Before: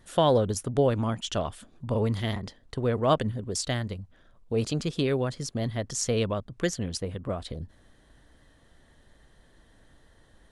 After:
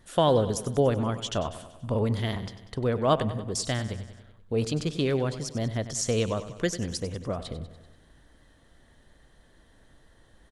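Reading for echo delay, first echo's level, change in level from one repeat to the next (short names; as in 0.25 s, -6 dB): 96 ms, -13.5 dB, -4.5 dB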